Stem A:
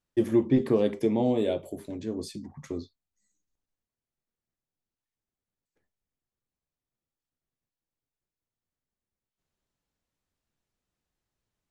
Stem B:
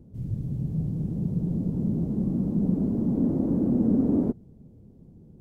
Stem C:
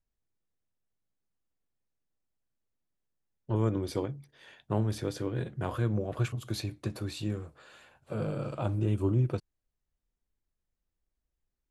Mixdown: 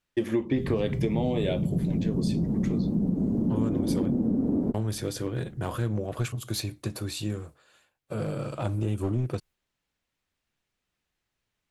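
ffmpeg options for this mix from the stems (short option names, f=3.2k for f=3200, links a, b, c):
-filter_complex "[0:a]equalizer=f=2.4k:t=o:w=1.9:g=8,volume=1dB[a];[1:a]adelay=400,volume=2.5dB[b];[2:a]agate=range=-33dB:threshold=-46dB:ratio=3:detection=peak,aemphasis=mode=production:type=cd,aeval=exprs='clip(val(0),-1,0.0422)':c=same,volume=2.5dB,asplit=3[c][d][e];[c]atrim=end=4.21,asetpts=PTS-STARTPTS,afade=t=out:st=4.206:d=0.004:c=hsin[f];[d]atrim=start=4.21:end=4.74,asetpts=PTS-STARTPTS,volume=0[g];[e]atrim=start=4.74,asetpts=PTS-STARTPTS,afade=t=in:d=0.004:c=hsin[h];[f][g][h]concat=n=3:v=0:a=1[i];[a][b][i]amix=inputs=3:normalize=0,acompressor=threshold=-22dB:ratio=6"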